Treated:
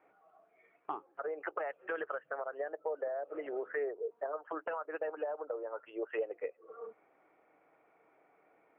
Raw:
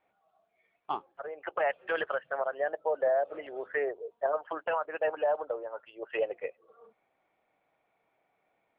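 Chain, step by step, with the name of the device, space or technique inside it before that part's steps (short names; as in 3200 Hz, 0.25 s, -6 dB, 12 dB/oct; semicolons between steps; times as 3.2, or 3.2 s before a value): bass amplifier (compressor 4:1, threshold -46 dBFS, peak gain reduction 18.5 dB; speaker cabinet 61–2400 Hz, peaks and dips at 66 Hz -10 dB, 110 Hz -10 dB, 210 Hz -4 dB, 310 Hz +7 dB, 440 Hz +6 dB, 1300 Hz +5 dB); gain +5.5 dB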